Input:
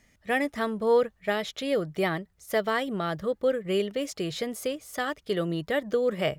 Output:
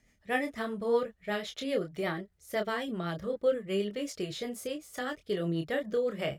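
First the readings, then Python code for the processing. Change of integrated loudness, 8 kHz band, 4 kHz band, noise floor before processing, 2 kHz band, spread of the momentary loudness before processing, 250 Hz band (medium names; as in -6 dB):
-5.0 dB, -4.5 dB, -5.0 dB, -67 dBFS, -5.0 dB, 7 LU, -4.0 dB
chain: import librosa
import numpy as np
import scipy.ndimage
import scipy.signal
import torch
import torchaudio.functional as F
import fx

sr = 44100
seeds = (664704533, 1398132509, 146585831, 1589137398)

y = fx.rotary(x, sr, hz=8.0)
y = fx.chorus_voices(y, sr, voices=2, hz=0.76, base_ms=27, depth_ms=3.3, mix_pct=35)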